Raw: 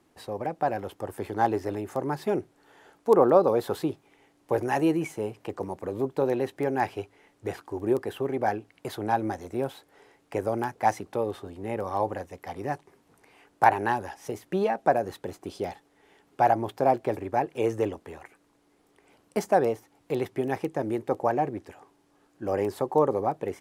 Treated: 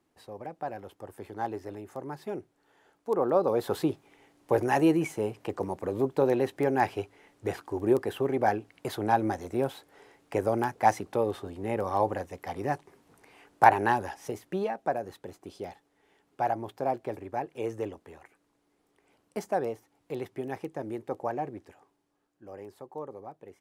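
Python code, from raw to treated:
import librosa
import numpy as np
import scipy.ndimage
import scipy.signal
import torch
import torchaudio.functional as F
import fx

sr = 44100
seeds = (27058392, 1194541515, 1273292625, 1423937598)

y = fx.gain(x, sr, db=fx.line((3.11, -9.0), (3.8, 1.0), (14.09, 1.0), (14.81, -7.0), (21.67, -7.0), (22.5, -17.0)))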